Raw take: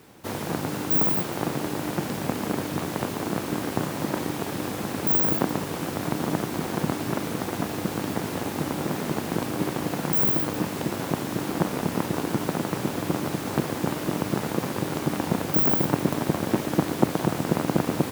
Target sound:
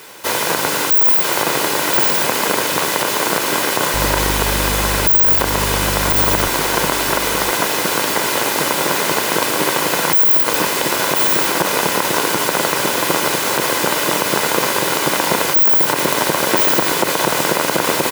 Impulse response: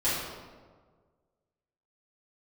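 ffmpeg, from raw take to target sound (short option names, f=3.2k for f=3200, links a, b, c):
-filter_complex "[0:a]highpass=f=1.3k:p=1,aecho=1:1:2:0.35,asettb=1/sr,asplit=3[a][b][c];[a]atrim=end=3.944[d];[b]atrim=start=3.94:end=6.48,asetpts=PTS-STARTPTS,afade=t=in:d=0.004:c=qsin,afade=t=out:st=2.536:d=0.004:c=qsin,aeval=exprs='val(0)+0.0112*(sin(2*PI*50*n/s)+sin(2*PI*2*50*n/s)/2+sin(2*PI*3*50*n/s)/3+sin(2*PI*4*50*n/s)/4+sin(2*PI*5*50*n/s)/5)':c=same[e];[c]atrim=start=6.476[f];[d][e]acrossfade=d=0.004:c1=hsin:c2=qsin[g];[g][f]acrossfade=d=0.004:c1=qsin:c2=hsin,aecho=1:1:1029:0.224,alimiter=level_in=19.5dB:limit=-1dB:release=50:level=0:latency=1,volume=-1dB"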